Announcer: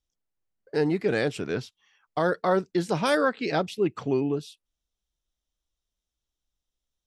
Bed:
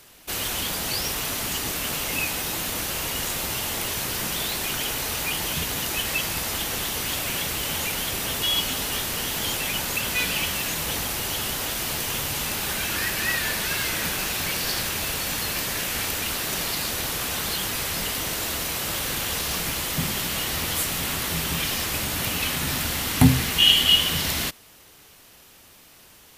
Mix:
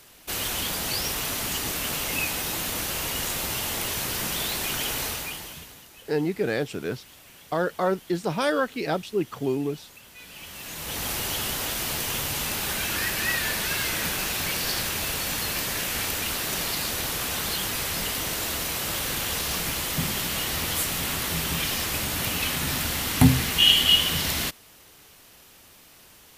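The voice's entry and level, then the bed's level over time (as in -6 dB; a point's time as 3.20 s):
5.35 s, -1.0 dB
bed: 5.05 s -1 dB
5.89 s -22.5 dB
10.15 s -22.5 dB
11.09 s -1 dB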